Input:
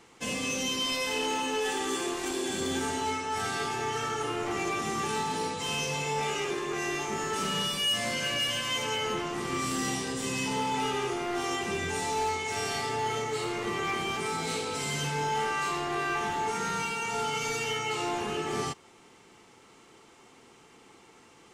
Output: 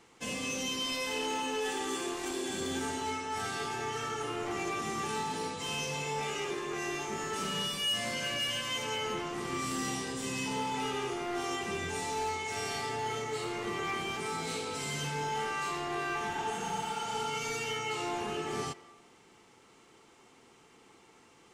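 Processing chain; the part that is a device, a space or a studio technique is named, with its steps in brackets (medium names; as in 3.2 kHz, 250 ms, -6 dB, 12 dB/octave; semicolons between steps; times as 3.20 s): filtered reverb send (on a send at -17 dB: high-pass 340 Hz + low-pass 4.4 kHz + reverberation RT60 1.1 s, pre-delay 101 ms); on the sum: spectral replace 16.36–17.22 s, 590–6300 Hz both; trim -4 dB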